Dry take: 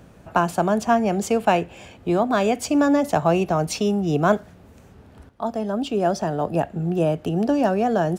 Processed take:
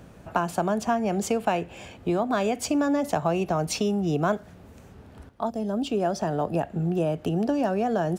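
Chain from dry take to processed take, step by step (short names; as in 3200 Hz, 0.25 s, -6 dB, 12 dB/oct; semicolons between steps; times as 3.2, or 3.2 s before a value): 5.49–5.93 bell 1400 Hz -13.5 dB -> -1.5 dB 2.4 oct; compressor 2.5:1, threshold -23 dBFS, peak gain reduction 7.5 dB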